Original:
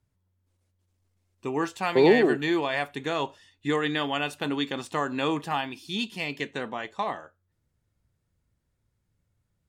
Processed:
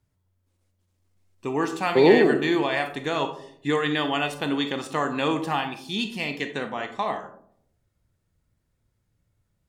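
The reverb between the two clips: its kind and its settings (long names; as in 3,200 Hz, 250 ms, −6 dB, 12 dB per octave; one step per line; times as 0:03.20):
comb and all-pass reverb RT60 0.67 s, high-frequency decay 0.3×, pre-delay 0 ms, DRR 7 dB
level +2 dB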